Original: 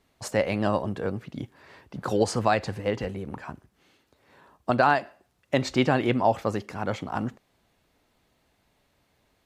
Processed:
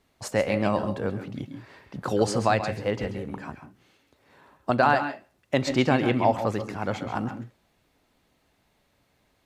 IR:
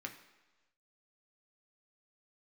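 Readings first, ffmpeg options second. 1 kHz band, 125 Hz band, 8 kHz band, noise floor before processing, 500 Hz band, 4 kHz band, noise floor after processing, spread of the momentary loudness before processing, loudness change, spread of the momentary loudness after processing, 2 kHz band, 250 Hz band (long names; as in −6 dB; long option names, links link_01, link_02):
+0.5 dB, +1.0 dB, +0.5 dB, −70 dBFS, +0.5 dB, +0.5 dB, −69 dBFS, 15 LU, +0.5 dB, 17 LU, +0.5 dB, +1.0 dB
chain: -filter_complex "[0:a]asplit=2[link_01][link_02];[link_02]equalizer=frequency=1500:width_type=o:width=0.77:gain=-4[link_03];[1:a]atrim=start_sample=2205,atrim=end_sample=3528,adelay=134[link_04];[link_03][link_04]afir=irnorm=-1:irlink=0,volume=-5dB[link_05];[link_01][link_05]amix=inputs=2:normalize=0"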